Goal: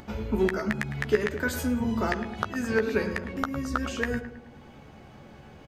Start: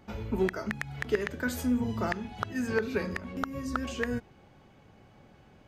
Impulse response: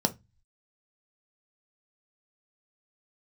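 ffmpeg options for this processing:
-filter_complex "[0:a]asplit=2[a][b];[b]adelay=14,volume=-7.5dB[c];[a][c]amix=inputs=2:normalize=0,asplit=2[d][e];[e]adelay=107,lowpass=f=2.2k:p=1,volume=-10dB,asplit=2[f][g];[g]adelay=107,lowpass=f=2.2k:p=1,volume=0.51,asplit=2[h][i];[i]adelay=107,lowpass=f=2.2k:p=1,volume=0.51,asplit=2[j][k];[k]adelay=107,lowpass=f=2.2k:p=1,volume=0.51,asplit=2[l][m];[m]adelay=107,lowpass=f=2.2k:p=1,volume=0.51,asplit=2[n][o];[o]adelay=107,lowpass=f=2.2k:p=1,volume=0.51[p];[d][f][h][j][l][n][p]amix=inputs=7:normalize=0,acompressor=mode=upward:threshold=-44dB:ratio=2.5,volume=3dB"

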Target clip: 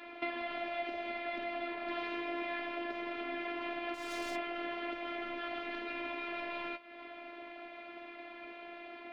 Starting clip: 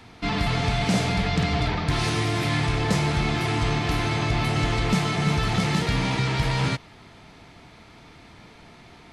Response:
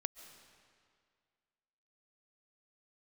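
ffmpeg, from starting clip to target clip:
-filter_complex "[0:a]highpass=f=200:w=0.5412,highpass=f=200:w=1.3066,equalizer=f=590:t=q:w=4:g=10,equalizer=f=880:t=q:w=4:g=-3,equalizer=f=2.4k:t=q:w=4:g=5,lowpass=f=3.1k:w=0.5412,lowpass=f=3.1k:w=1.3066,asettb=1/sr,asplit=3[a][b][c];[a]atrim=end=3.944[d];[b]atrim=start=3.94:end=4.36,asetpts=PTS-STARTPTS,afade=t=in:d=0.004:c=qsin,afade=t=out:st=0.416:d=0.004:c=qsin,asoftclip=type=hard:threshold=-32.5dB[e];[c]atrim=start=4.356[f];[d][e]acrossfade=d=0.004:c1=hsin:c2=qsin[g];[g][f]acrossfade=d=0.004:c1=qsin:c2=hsin,flanger=delay=8.5:depth=7.6:regen=50:speed=1:shape=triangular,acompressor=threshold=-40dB:ratio=12,afftfilt=real='hypot(re,im)*cos(PI*b)':imag='0':win_size=512:overlap=0.75,volume=7dB"

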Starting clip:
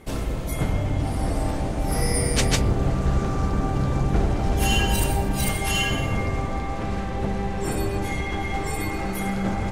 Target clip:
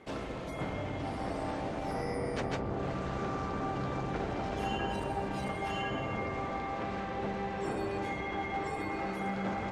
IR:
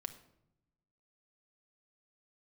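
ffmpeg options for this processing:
-filter_complex "[0:a]acrossover=split=1600[a][b];[a]asoftclip=type=tanh:threshold=-18.5dB[c];[b]acompressor=threshold=-39dB:ratio=6[d];[c][d]amix=inputs=2:normalize=0,highpass=f=360:p=1,adynamicsmooth=sensitivity=1:basefreq=4.3k,volume=-2.5dB"

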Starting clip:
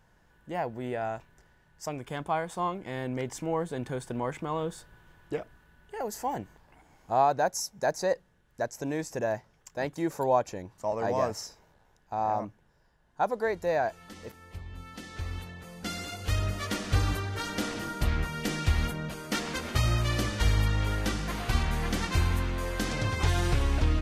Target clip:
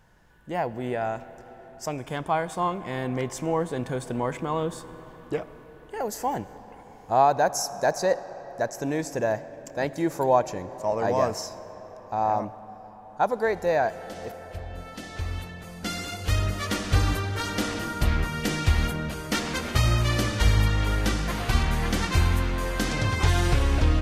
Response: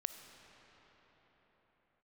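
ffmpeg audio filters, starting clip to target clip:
-filter_complex "[0:a]asplit=2[a][b];[1:a]atrim=start_sample=2205,asetrate=39249,aresample=44100[c];[b][c]afir=irnorm=-1:irlink=0,volume=-2.5dB[d];[a][d]amix=inputs=2:normalize=0"

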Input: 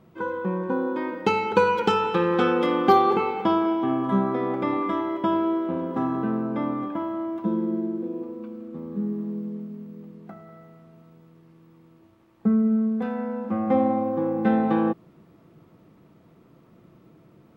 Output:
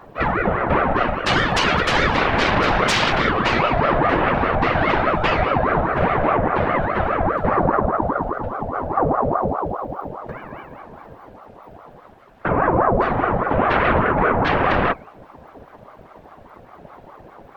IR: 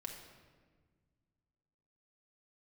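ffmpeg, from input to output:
-af "highshelf=f=3.8k:g=-6,bandreject=f=181:t=h:w=4,bandreject=f=362:t=h:w=4,bandreject=f=543:t=h:w=4,bandreject=f=724:t=h:w=4,bandreject=f=905:t=h:w=4,bandreject=f=1.086k:t=h:w=4,bandreject=f=1.267k:t=h:w=4,bandreject=f=1.448k:t=h:w=4,bandreject=f=1.629k:t=h:w=4,bandreject=f=1.81k:t=h:w=4,bandreject=f=1.991k:t=h:w=4,bandreject=f=2.172k:t=h:w=4,bandreject=f=2.353k:t=h:w=4,bandreject=f=2.534k:t=h:w=4,bandreject=f=2.715k:t=h:w=4,bandreject=f=2.896k:t=h:w=4,bandreject=f=3.077k:t=h:w=4,bandreject=f=3.258k:t=h:w=4,bandreject=f=3.439k:t=h:w=4,bandreject=f=3.62k:t=h:w=4,bandreject=f=3.801k:t=h:w=4,bandreject=f=3.982k:t=h:w=4,bandreject=f=4.163k:t=h:w=4,bandreject=f=4.344k:t=h:w=4,bandreject=f=4.525k:t=h:w=4,bandreject=f=4.706k:t=h:w=4,bandreject=f=4.887k:t=h:w=4,bandreject=f=5.068k:t=h:w=4,bandreject=f=5.249k:t=h:w=4,aeval=exprs='0.531*sin(PI/2*6.31*val(0)/0.531)':c=same,afftfilt=real='hypot(re,im)*cos(2*PI*random(0))':imag='hypot(re,im)*sin(2*PI*random(1))':win_size=512:overlap=0.75,aeval=exprs='val(0)*sin(2*PI*640*n/s+640*0.55/4.9*sin(2*PI*4.9*n/s))':c=same"

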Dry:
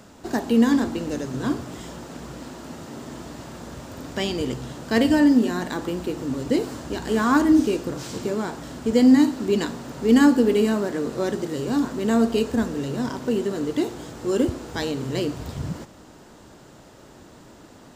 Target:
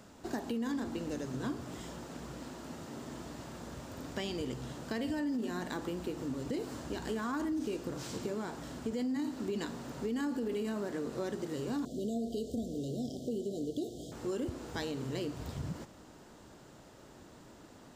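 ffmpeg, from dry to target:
-filter_complex "[0:a]alimiter=limit=-15dB:level=0:latency=1:release=29,acompressor=threshold=-27dB:ratio=2.5,asettb=1/sr,asplit=3[a][b][c];[a]atrim=end=11.854[d];[b]atrim=start=11.85:end=14.12,asetpts=PTS-STARTPTS,afade=t=in:d=0.004:c=qsin,afade=t=out:st=2.266:d=0.004:c=qsin,asuperstop=centerf=1500:order=20:qfactor=0.64[e];[c]atrim=start=14.116[f];[d][e]acrossfade=d=0.004:c1=hsin:c2=qsin[g];[g][f]acrossfade=d=0.004:c1=qsin:c2=hsin,volume=-7.5dB"

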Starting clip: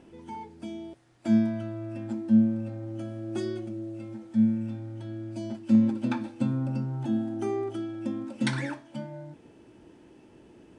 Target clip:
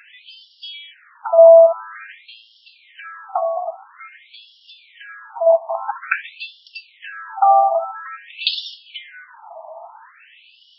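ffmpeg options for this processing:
-af "highpass=f=610:t=q:w=5.9,alimiter=level_in=20dB:limit=-1dB:release=50:level=0:latency=1,afftfilt=real='re*between(b*sr/1024,850*pow(4000/850,0.5+0.5*sin(2*PI*0.49*pts/sr))/1.41,850*pow(4000/850,0.5+0.5*sin(2*PI*0.49*pts/sr))*1.41)':imag='im*between(b*sr/1024,850*pow(4000/850,0.5+0.5*sin(2*PI*0.49*pts/sr))/1.41,850*pow(4000/850,0.5+0.5*sin(2*PI*0.49*pts/sr))*1.41)':win_size=1024:overlap=0.75,volume=2.5dB"

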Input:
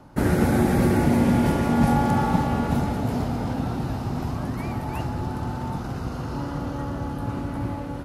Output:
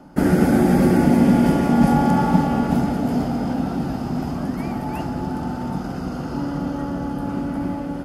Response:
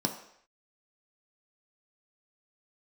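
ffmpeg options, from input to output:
-filter_complex "[0:a]asplit=2[a][b];[1:a]atrim=start_sample=2205,asetrate=39249,aresample=44100[c];[b][c]afir=irnorm=-1:irlink=0,volume=-14.5dB[d];[a][d]amix=inputs=2:normalize=0"

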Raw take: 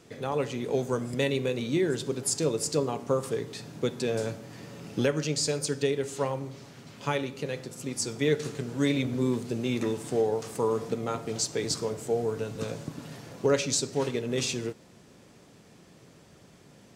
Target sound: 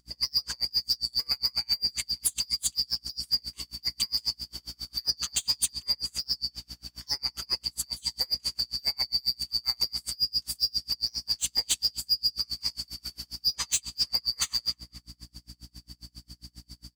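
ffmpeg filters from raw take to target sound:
-filter_complex "[0:a]afftfilt=real='real(if(lt(b,272),68*(eq(floor(b/68),0)*1+eq(floor(b/68),1)*2+eq(floor(b/68),2)*3+eq(floor(b/68),3)*0)+mod(b,68),b),0)':imag='imag(if(lt(b,272),68*(eq(floor(b/68),0)*1+eq(floor(b/68),1)*2+eq(floor(b/68),2)*3+eq(floor(b/68),3)*0)+mod(b,68),b),0)':win_size=2048:overlap=0.75,aemphasis=mode=production:type=75fm,acompressor=threshold=-20dB:ratio=5,lowshelf=f=96:g=-9.5,asplit=2[a][b];[b]adelay=239,lowpass=f=3.9k:p=1,volume=-15.5dB,asplit=2[c][d];[d]adelay=239,lowpass=f=3.9k:p=1,volume=0.36,asplit=2[e][f];[f]adelay=239,lowpass=f=3.9k:p=1,volume=0.36[g];[a][c][e][g]amix=inputs=4:normalize=0,aeval=exprs='val(0)+0.00631*(sin(2*PI*60*n/s)+sin(2*PI*2*60*n/s)/2+sin(2*PI*3*60*n/s)/3+sin(2*PI*4*60*n/s)/4+sin(2*PI*5*60*n/s)/5)':c=same,asoftclip=type=hard:threshold=-19.5dB,aeval=exprs='val(0)*pow(10,-36*(0.5-0.5*cos(2*PI*7.4*n/s))/20)':c=same,volume=2dB"

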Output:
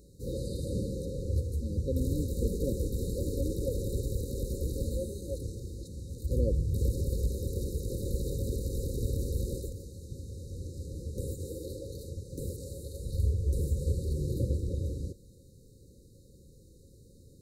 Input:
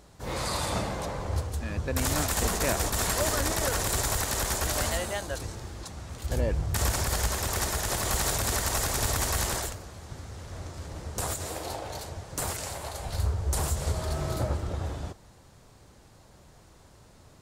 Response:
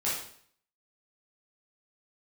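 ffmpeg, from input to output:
-filter_complex "[0:a]afftfilt=real='re*(1-between(b*sr/4096,560,3700))':imag='im*(1-between(b*sr/4096,560,3700))':win_size=4096:overlap=0.75,acrossover=split=2900[a][b];[b]acompressor=threshold=-46dB:ratio=4:attack=1:release=60[c];[a][c]amix=inputs=2:normalize=0,equalizer=f=5.2k:w=1.1:g=-8"

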